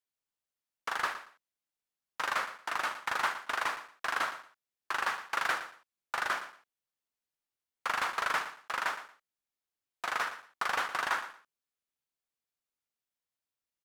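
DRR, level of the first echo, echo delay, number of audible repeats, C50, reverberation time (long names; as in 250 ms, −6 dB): no reverb audible, −12.5 dB, 115 ms, 2, no reverb audible, no reverb audible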